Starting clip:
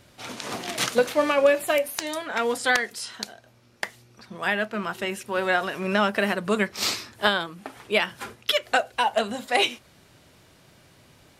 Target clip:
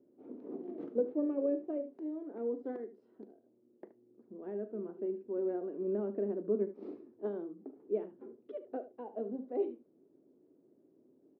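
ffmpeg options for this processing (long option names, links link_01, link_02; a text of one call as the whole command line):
ffmpeg -i in.wav -af "asuperpass=centerf=330:order=4:qfactor=1.9,aecho=1:1:39|74:0.158|0.2,volume=-2dB" out.wav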